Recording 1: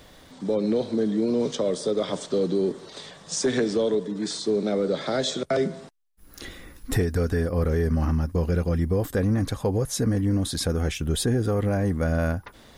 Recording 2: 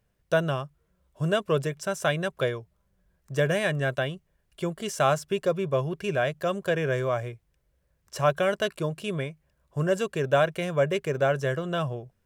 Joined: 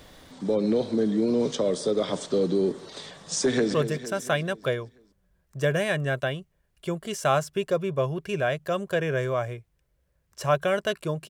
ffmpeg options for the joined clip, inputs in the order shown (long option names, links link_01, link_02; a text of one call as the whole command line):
ffmpeg -i cue0.wav -i cue1.wav -filter_complex "[0:a]apad=whole_dur=11.29,atrim=end=11.29,atrim=end=3.742[link_01];[1:a]atrim=start=1.488:end=9.04[link_02];[link_01][link_02]acrossfade=duration=0.004:curve1=hsin:curve2=hsin,asplit=2[link_03][link_04];[link_04]afade=type=in:start_time=3.47:duration=0.01,afade=type=out:start_time=3.74:duration=0.01,aecho=0:1:230|460|690|920|1150|1380:0.334965|0.184231|0.101327|0.0557299|0.0306514|0.0168583[link_05];[link_03][link_05]amix=inputs=2:normalize=0" out.wav